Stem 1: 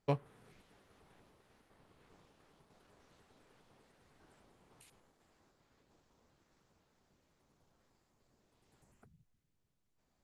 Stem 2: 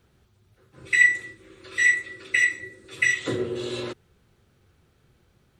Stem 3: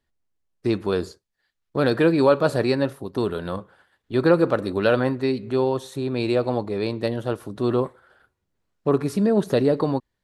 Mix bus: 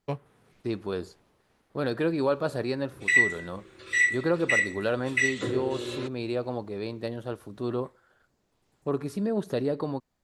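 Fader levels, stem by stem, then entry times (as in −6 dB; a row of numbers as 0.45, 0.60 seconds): +1.0, −3.5, −8.5 decibels; 0.00, 2.15, 0.00 seconds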